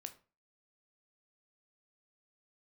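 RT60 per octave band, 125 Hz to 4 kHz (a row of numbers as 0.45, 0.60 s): 0.40, 0.40, 0.35, 0.35, 0.30, 0.25 s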